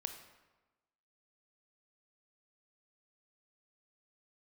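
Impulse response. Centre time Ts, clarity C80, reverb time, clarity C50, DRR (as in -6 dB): 20 ms, 10.0 dB, 1.2 s, 8.0 dB, 6.5 dB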